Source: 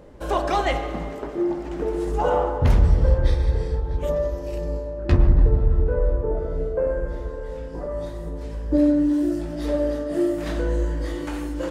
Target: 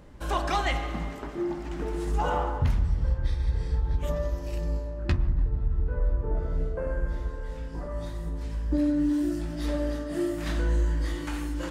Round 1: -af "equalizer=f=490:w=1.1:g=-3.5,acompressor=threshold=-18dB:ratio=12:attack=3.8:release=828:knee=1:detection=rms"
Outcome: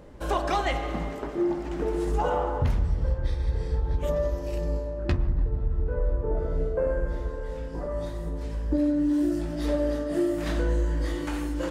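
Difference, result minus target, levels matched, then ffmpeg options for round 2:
500 Hz band +4.0 dB
-af "equalizer=f=490:w=1.1:g=-11,acompressor=threshold=-18dB:ratio=12:attack=3.8:release=828:knee=1:detection=rms"

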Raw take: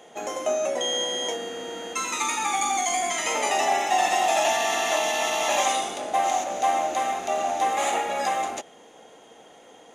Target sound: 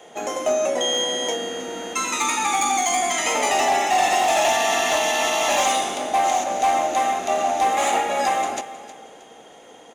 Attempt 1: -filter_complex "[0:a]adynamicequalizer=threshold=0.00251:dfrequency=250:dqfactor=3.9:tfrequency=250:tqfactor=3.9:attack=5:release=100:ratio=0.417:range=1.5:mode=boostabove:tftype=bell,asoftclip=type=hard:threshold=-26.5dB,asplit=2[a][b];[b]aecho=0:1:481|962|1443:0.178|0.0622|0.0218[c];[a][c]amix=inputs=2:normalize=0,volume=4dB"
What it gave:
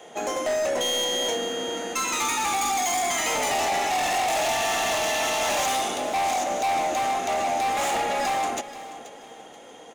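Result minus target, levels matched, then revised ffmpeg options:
echo 0.167 s late; hard clip: distortion +11 dB
-filter_complex "[0:a]adynamicequalizer=threshold=0.00251:dfrequency=250:dqfactor=3.9:tfrequency=250:tqfactor=3.9:attack=5:release=100:ratio=0.417:range=1.5:mode=boostabove:tftype=bell,asoftclip=type=hard:threshold=-18dB,asplit=2[a][b];[b]aecho=0:1:314|628|942:0.178|0.0622|0.0218[c];[a][c]amix=inputs=2:normalize=0,volume=4dB"

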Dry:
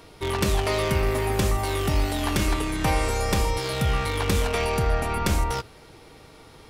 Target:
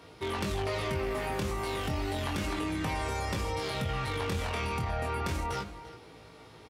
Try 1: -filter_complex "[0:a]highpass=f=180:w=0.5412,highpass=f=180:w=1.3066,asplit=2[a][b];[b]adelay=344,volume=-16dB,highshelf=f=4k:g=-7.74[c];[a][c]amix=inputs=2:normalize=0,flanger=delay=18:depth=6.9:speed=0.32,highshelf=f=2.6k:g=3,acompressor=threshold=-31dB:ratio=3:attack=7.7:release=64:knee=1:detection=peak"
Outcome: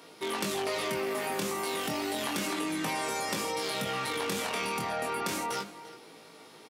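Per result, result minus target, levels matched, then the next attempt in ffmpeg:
125 Hz band -12.0 dB; 8000 Hz band +7.0 dB
-filter_complex "[0:a]highpass=f=60:w=0.5412,highpass=f=60:w=1.3066,asplit=2[a][b];[b]adelay=344,volume=-16dB,highshelf=f=4k:g=-7.74[c];[a][c]amix=inputs=2:normalize=0,flanger=delay=18:depth=6.9:speed=0.32,highshelf=f=2.6k:g=3,acompressor=threshold=-31dB:ratio=3:attack=7.7:release=64:knee=1:detection=peak"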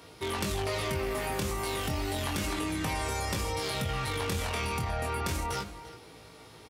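8000 Hz band +6.0 dB
-filter_complex "[0:a]highpass=f=60:w=0.5412,highpass=f=60:w=1.3066,asplit=2[a][b];[b]adelay=344,volume=-16dB,highshelf=f=4k:g=-7.74[c];[a][c]amix=inputs=2:normalize=0,flanger=delay=18:depth=6.9:speed=0.32,highshelf=f=2.6k:g=3,acompressor=threshold=-31dB:ratio=3:attack=7.7:release=64:knee=1:detection=peak,highshelf=f=5.7k:g=-10.5"

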